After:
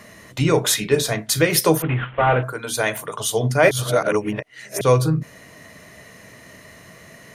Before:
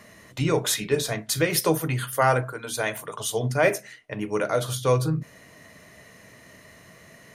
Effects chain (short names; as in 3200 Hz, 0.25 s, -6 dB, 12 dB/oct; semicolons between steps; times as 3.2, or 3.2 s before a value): 1.82–2.43 CVSD 16 kbps; 3.71–4.81 reverse; gain +5.5 dB